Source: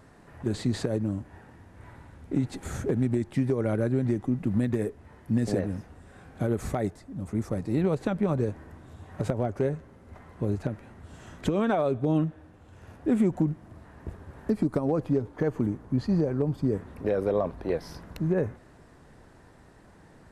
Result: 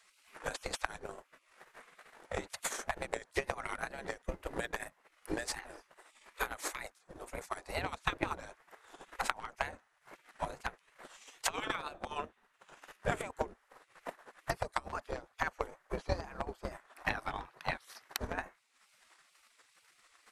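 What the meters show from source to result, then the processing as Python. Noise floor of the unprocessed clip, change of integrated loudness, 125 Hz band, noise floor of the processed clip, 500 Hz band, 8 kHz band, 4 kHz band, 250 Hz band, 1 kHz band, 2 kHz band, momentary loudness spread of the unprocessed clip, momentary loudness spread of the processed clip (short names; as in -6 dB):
-54 dBFS, -11.0 dB, -19.5 dB, -72 dBFS, -13.0 dB, +4.5 dB, +3.0 dB, -21.5 dB, -0.5 dB, +4.5 dB, 14 LU, 19 LU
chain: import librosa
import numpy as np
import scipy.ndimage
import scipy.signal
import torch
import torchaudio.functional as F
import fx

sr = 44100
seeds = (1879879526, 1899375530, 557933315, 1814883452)

y = fx.wow_flutter(x, sr, seeds[0], rate_hz=2.1, depth_cents=97.0)
y = fx.spec_gate(y, sr, threshold_db=-20, keep='weak')
y = fx.transient(y, sr, attack_db=12, sustain_db=-8)
y = y * 10.0 ** (1.5 / 20.0)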